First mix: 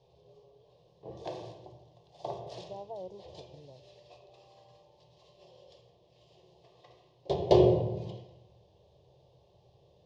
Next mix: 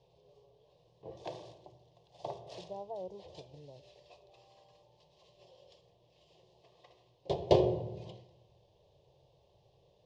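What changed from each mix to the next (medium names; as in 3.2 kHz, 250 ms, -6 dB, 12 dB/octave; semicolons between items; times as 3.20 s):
background: send -8.5 dB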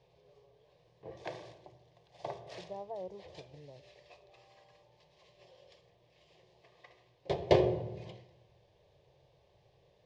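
master: add high-order bell 1.7 kHz +11.5 dB 1.1 oct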